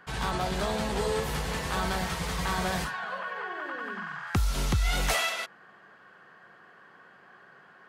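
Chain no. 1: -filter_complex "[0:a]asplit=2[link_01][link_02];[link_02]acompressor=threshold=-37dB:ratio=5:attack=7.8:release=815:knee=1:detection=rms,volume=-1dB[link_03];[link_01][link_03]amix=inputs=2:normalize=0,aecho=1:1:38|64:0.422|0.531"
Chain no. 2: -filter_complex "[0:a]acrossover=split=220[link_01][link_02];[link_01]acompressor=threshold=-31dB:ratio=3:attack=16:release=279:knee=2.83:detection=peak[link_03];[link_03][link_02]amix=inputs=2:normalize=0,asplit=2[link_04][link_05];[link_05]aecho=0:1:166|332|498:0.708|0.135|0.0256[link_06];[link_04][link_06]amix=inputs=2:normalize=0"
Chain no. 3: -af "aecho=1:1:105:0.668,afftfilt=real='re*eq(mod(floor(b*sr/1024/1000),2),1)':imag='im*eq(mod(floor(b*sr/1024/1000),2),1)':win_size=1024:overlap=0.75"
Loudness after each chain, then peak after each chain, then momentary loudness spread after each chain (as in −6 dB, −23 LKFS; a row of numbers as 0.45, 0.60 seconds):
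−26.5, −29.0, −33.5 LKFS; −11.0, −14.0, −17.5 dBFS; 23, 8, 23 LU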